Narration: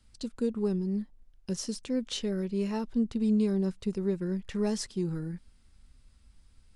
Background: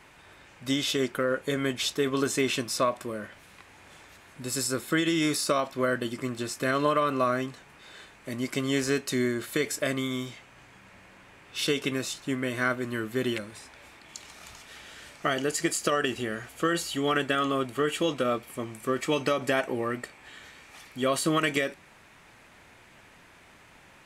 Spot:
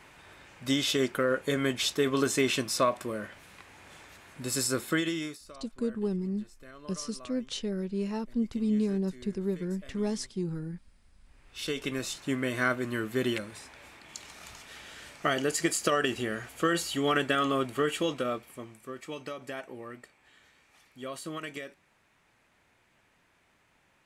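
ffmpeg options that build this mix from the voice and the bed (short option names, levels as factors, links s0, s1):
-filter_complex "[0:a]adelay=5400,volume=0.841[s0];[1:a]volume=14.1,afade=t=out:st=4.82:d=0.57:silence=0.0668344,afade=t=in:st=11.21:d=1.06:silence=0.0707946,afade=t=out:st=17.73:d=1.14:silence=0.237137[s1];[s0][s1]amix=inputs=2:normalize=0"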